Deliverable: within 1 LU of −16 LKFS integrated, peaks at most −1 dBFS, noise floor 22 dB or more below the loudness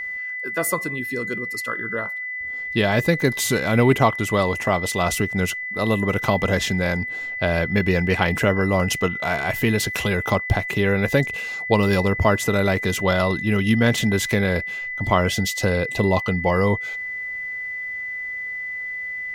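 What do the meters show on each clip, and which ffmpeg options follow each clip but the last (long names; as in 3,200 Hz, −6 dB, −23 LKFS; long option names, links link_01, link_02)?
interfering tone 2,000 Hz; level of the tone −27 dBFS; integrated loudness −21.5 LKFS; sample peak −3.5 dBFS; target loudness −16.0 LKFS
→ -af "bandreject=frequency=2000:width=30"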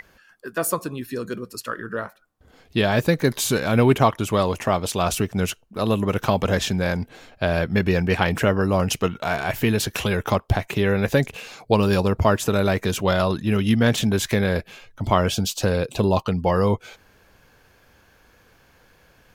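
interfering tone none found; integrated loudness −22.0 LKFS; sample peak −3.5 dBFS; target loudness −16.0 LKFS
→ -af "volume=6dB,alimiter=limit=-1dB:level=0:latency=1"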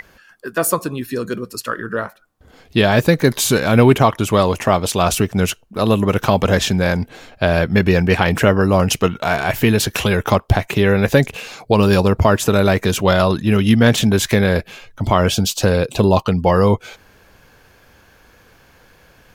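integrated loudness −16.5 LKFS; sample peak −1.0 dBFS; background noise floor −51 dBFS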